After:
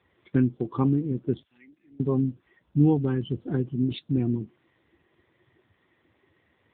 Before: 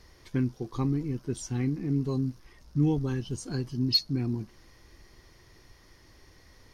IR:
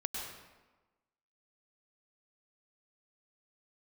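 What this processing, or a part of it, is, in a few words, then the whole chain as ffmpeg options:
mobile call with aggressive noise cancelling: -filter_complex "[0:a]asettb=1/sr,asplit=3[link_01][link_02][link_03];[link_01]atrim=end=1.434[link_04];[link_02]atrim=start=1.43:end=2,asetpts=PTS-STARTPTS,afade=type=in:duration=0.004:curve=qsin,afade=type=out:start_time=0.566:duration=0.004:curve=qsin,aderivative[link_05];[link_03]atrim=start=1.996[link_06];[link_04][link_05]acrossfade=duration=0.004:curve1=hsin:curve2=qsin[link_07];[link_07][link_06]acrossfade=duration=0.004:curve1=qsin:curve2=hsin,highpass=frequency=160:poles=1,afftdn=noise_reduction=13:noise_floor=-45,volume=8dB" -ar 8000 -c:a libopencore_amrnb -b:a 7950

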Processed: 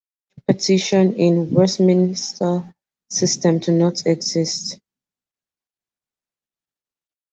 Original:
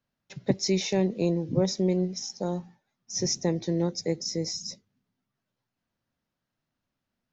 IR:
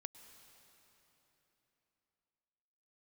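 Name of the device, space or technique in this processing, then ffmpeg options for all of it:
video call: -af "highpass=frequency=130:width=0.5412,highpass=frequency=130:width=1.3066,dynaudnorm=framelen=160:gausssize=5:maxgain=9dB,agate=range=-27dB:threshold=-34dB:ratio=16:detection=peak,volume=2.5dB" -ar 48000 -c:a libopus -b:a 24k

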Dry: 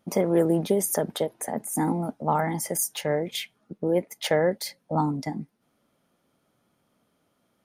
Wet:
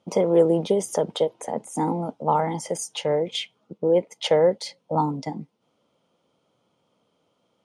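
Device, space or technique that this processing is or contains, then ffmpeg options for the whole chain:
car door speaker: -af "highpass=85,equalizer=frequency=240:width_type=q:width=4:gain=-3,equalizer=frequency=490:width_type=q:width=4:gain=7,equalizer=frequency=940:width_type=q:width=4:gain=5,equalizer=frequency=1700:width_type=q:width=4:gain=-9,equalizer=frequency=3100:width_type=q:width=4:gain=6,lowpass=frequency=8000:width=0.5412,lowpass=frequency=8000:width=1.3066"

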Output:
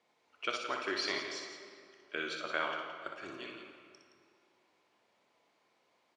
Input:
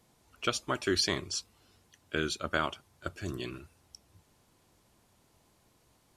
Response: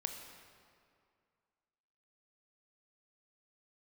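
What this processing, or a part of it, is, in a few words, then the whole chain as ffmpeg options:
station announcement: -filter_complex "[0:a]highpass=400,lowpass=4100,equalizer=frequency=2200:width_type=o:width=0.3:gain=5.5,aecho=1:1:61.22|169.1:0.501|0.316[link_01];[1:a]atrim=start_sample=2205[link_02];[link_01][link_02]afir=irnorm=-1:irlink=0,volume=-3.5dB"

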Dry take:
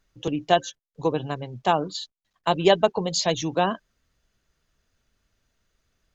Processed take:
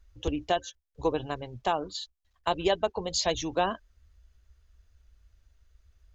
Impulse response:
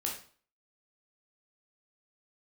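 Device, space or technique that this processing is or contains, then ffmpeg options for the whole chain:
car stereo with a boomy subwoofer: -af "lowshelf=frequency=100:width_type=q:width=3:gain=13.5,alimiter=limit=-11dB:level=0:latency=1:release=435,volume=-2.5dB"

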